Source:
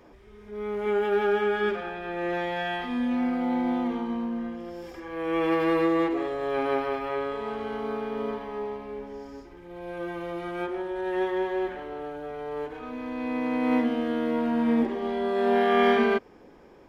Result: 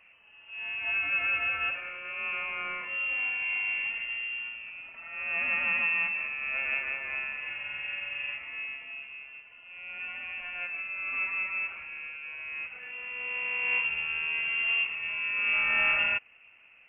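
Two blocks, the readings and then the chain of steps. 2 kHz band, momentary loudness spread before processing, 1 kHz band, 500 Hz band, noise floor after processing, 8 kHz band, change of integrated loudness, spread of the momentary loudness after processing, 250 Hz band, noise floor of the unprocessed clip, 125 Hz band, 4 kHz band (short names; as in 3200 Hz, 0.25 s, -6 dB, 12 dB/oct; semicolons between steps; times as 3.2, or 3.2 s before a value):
+7.5 dB, 13 LU, -12.0 dB, -24.5 dB, -57 dBFS, n/a, -1.5 dB, 13 LU, -31.0 dB, -51 dBFS, under -15 dB, +5.0 dB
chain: CVSD 32 kbps; HPF 130 Hz 12 dB/oct; inverted band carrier 3000 Hz; gain -4.5 dB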